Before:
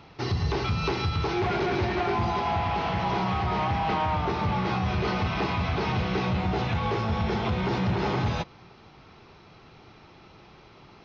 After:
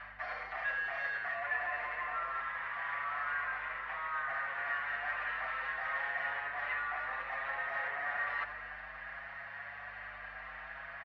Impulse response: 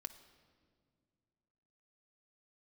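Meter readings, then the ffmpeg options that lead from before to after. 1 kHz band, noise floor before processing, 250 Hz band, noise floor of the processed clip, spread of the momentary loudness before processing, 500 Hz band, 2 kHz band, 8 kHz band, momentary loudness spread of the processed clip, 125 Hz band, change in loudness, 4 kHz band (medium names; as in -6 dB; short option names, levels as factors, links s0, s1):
-10.5 dB, -52 dBFS, under -35 dB, -48 dBFS, 1 LU, -17.5 dB, +1.0 dB, no reading, 10 LU, under -35 dB, -10.0 dB, -17.5 dB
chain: -filter_complex "[0:a]highpass=f=290:w=0.5412,highpass=f=290:w=1.3066,areverse,acompressor=threshold=0.01:ratio=10,areverse,afreqshift=330,aeval=exprs='val(0)+0.000794*(sin(2*PI*50*n/s)+sin(2*PI*2*50*n/s)/2+sin(2*PI*3*50*n/s)/3+sin(2*PI*4*50*n/s)/4+sin(2*PI*5*50*n/s)/5)':c=same,aeval=exprs='0.0266*(cos(1*acos(clip(val(0)/0.0266,-1,1)))-cos(1*PI/2))+0.00266*(cos(5*acos(clip(val(0)/0.0266,-1,1)))-cos(5*PI/2))':c=same,lowpass=f=1900:t=q:w=9.6,asplit=5[s0][s1][s2][s3][s4];[s1]adelay=83,afreqshift=-110,volume=0.224[s5];[s2]adelay=166,afreqshift=-220,volume=0.0944[s6];[s3]adelay=249,afreqshift=-330,volume=0.0394[s7];[s4]adelay=332,afreqshift=-440,volume=0.0166[s8];[s0][s5][s6][s7][s8]amix=inputs=5:normalize=0,asplit=2[s9][s10];[s10]adelay=6.4,afreqshift=0.6[s11];[s9][s11]amix=inputs=2:normalize=1"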